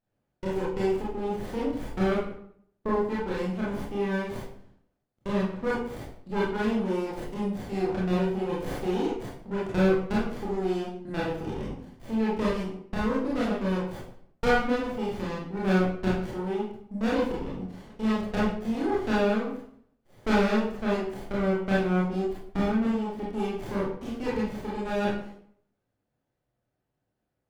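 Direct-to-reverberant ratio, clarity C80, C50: −7.0 dB, 6.0 dB, 0.5 dB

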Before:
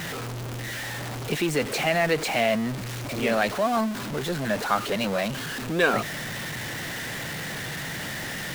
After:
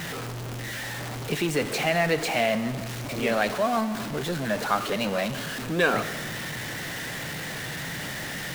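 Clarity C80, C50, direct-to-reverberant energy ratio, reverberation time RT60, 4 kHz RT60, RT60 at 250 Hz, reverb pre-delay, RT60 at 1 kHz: 13.5 dB, 12.5 dB, 11.0 dB, 1.5 s, 1.5 s, 1.6 s, 5 ms, 1.6 s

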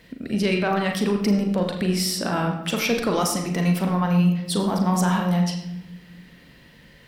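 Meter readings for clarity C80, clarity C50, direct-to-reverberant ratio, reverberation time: 8.0 dB, 6.0 dB, 2.5 dB, 0.85 s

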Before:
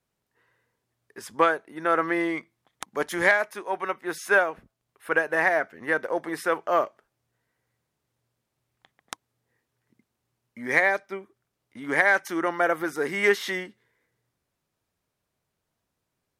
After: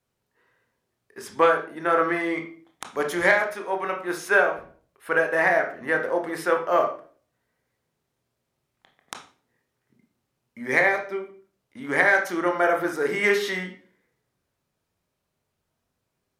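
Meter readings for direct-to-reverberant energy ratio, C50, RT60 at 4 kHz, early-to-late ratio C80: 2.5 dB, 9.0 dB, 0.35 s, 13.5 dB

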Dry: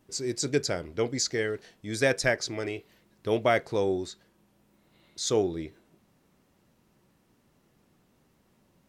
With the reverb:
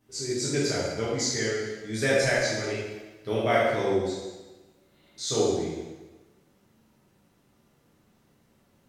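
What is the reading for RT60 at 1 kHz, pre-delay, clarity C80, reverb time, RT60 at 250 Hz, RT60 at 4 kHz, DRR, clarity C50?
1.2 s, 4 ms, 2.0 dB, 1.2 s, 1.2 s, 1.1 s, −8.5 dB, −1.5 dB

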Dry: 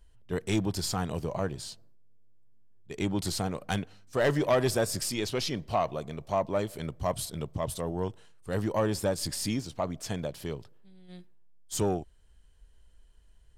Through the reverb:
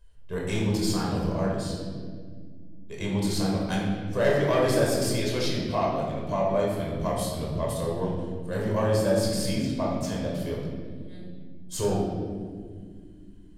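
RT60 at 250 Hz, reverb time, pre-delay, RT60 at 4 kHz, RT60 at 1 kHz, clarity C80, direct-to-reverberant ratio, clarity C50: 3.7 s, 2.0 s, 17 ms, 1.2 s, 1.5 s, 3.5 dB, −3.0 dB, 1.0 dB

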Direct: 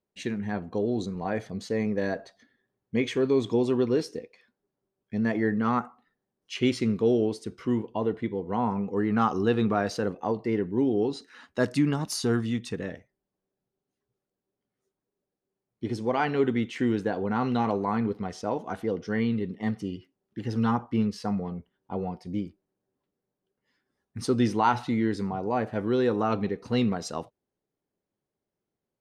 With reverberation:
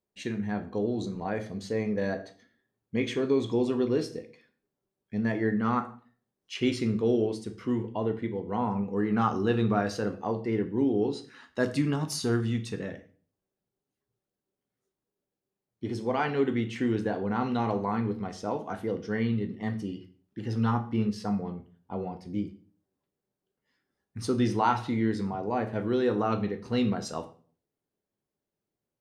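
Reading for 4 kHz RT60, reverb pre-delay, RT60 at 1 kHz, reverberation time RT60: 0.40 s, 8 ms, 0.40 s, 0.45 s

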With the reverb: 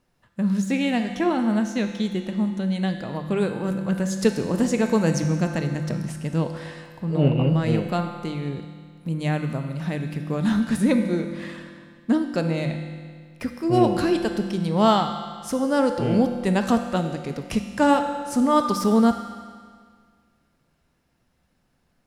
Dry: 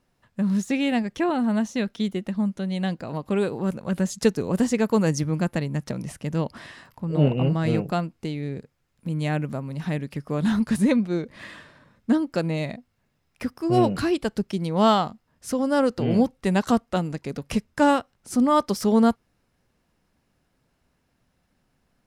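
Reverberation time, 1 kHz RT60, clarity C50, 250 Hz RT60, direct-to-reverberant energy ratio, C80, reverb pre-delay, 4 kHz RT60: 1.9 s, 1.9 s, 7.0 dB, 1.9 s, 6.0 dB, 8.0 dB, 20 ms, 1.8 s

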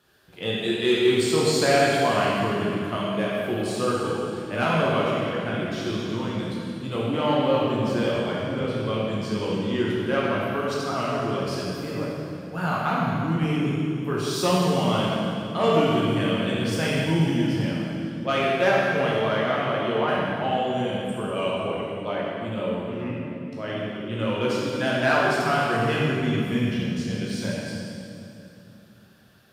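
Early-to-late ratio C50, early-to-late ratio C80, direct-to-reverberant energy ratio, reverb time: −2.5 dB, −0.5 dB, −6.0 dB, 2.8 s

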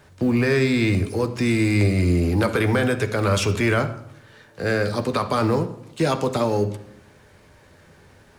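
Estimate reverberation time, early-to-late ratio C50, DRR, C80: 0.75 s, 12.5 dB, 7.0 dB, 15.0 dB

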